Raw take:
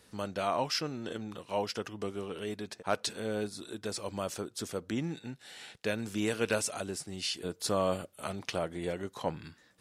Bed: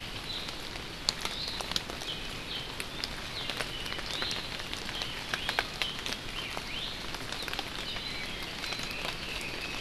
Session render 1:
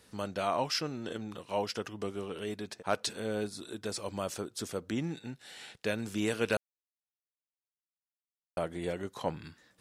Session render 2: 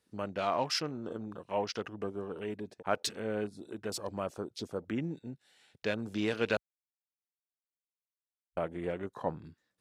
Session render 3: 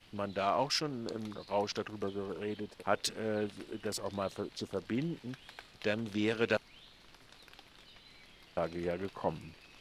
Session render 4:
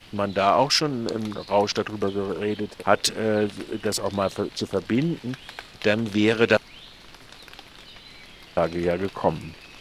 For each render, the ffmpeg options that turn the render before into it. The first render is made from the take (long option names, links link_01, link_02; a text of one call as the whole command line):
ffmpeg -i in.wav -filter_complex "[0:a]asplit=3[link_01][link_02][link_03];[link_01]atrim=end=6.57,asetpts=PTS-STARTPTS,afade=type=out:start_time=6.566:duration=0.004:curve=hsin[link_04];[link_02]atrim=start=6.57:end=8.57,asetpts=PTS-STARTPTS,volume=0[link_05];[link_03]atrim=start=8.57,asetpts=PTS-STARTPTS,afade=type=in:duration=0.004:curve=hsin[link_06];[link_04][link_05][link_06]concat=n=3:v=0:a=1" out.wav
ffmpeg -i in.wav -af "afwtdn=0.00501,lowshelf=frequency=130:gain=-3" out.wav
ffmpeg -i in.wav -i bed.wav -filter_complex "[1:a]volume=-20.5dB[link_01];[0:a][link_01]amix=inputs=2:normalize=0" out.wav
ffmpeg -i in.wav -af "volume=12dB" out.wav